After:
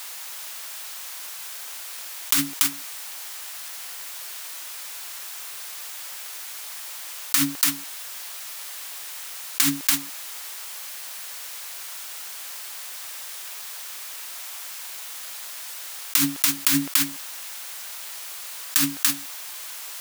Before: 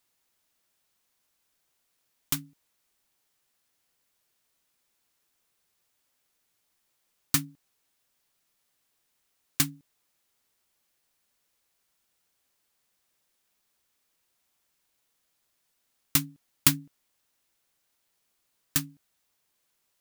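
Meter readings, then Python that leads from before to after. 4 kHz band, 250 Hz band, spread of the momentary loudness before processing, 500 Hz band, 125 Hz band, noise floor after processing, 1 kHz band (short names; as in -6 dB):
+10.0 dB, +9.0 dB, 16 LU, +7.0 dB, -1.0 dB, -37 dBFS, +9.5 dB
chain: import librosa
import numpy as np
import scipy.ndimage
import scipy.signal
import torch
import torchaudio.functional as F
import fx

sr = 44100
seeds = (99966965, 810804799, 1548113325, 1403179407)

p1 = scipy.signal.sosfilt(scipy.signal.butter(2, 770.0, 'highpass', fs=sr, output='sos'), x)
p2 = p1 + fx.echo_single(p1, sr, ms=287, db=-13.0, dry=0)
p3 = fx.env_flatten(p2, sr, amount_pct=100)
y = p3 * 10.0 ** (-1.0 / 20.0)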